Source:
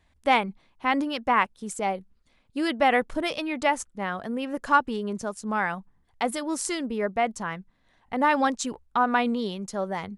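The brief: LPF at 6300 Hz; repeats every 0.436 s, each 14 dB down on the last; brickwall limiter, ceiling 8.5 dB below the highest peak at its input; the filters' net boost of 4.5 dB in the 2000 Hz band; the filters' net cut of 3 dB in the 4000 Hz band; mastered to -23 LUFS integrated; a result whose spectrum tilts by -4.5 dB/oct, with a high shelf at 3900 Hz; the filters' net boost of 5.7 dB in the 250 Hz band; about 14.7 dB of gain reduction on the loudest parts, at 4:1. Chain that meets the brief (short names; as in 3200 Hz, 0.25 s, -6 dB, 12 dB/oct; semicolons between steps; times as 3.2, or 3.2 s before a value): LPF 6300 Hz; bell 250 Hz +6.5 dB; bell 2000 Hz +8 dB; high shelf 3900 Hz -9 dB; bell 4000 Hz -3 dB; compressor 4:1, threshold -31 dBFS; limiter -25.5 dBFS; feedback echo 0.436 s, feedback 20%, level -14 dB; gain +12.5 dB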